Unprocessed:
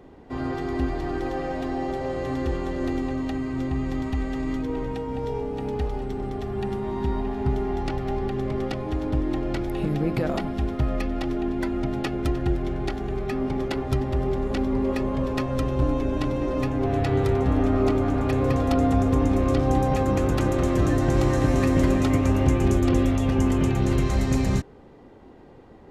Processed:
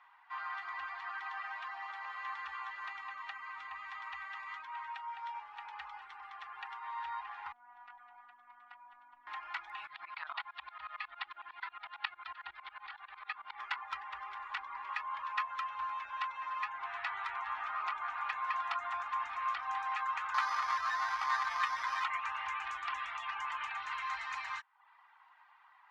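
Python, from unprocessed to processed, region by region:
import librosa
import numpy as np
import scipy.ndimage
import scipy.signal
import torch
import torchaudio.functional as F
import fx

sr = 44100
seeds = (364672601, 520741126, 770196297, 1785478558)

y = fx.chain(x, sr, fx.bandpass_q(hz=230.0, q=0.96),
    fx.robotise(hz=242.0),
    fx.env_flatten(amount_pct=70), at=(7.52, 9.27))
y = fx.chain(y, sr, fx.high_shelf_res(hz=5300.0, db=-8.0, q=3.0),
    fx.tremolo_shape(shape='saw_up', hz=11.0, depth_pct=90), at=(9.87, 13.59))
y = fx.chain(y, sr, fx.ellip_lowpass(hz=2500.0, order=4, stop_db=40),
    fx.resample_bad(factor=8, down='none', up='hold'),
    fx.env_flatten(amount_pct=100), at=(20.34, 22.04))
y = scipy.signal.sosfilt(scipy.signal.butter(2, 2200.0, 'lowpass', fs=sr, output='sos'), y)
y = fx.dereverb_blind(y, sr, rt60_s=0.5)
y = scipy.signal.sosfilt(scipy.signal.ellip(4, 1.0, 50, 980.0, 'highpass', fs=sr, output='sos'), y)
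y = y * 10.0 ** (2.0 / 20.0)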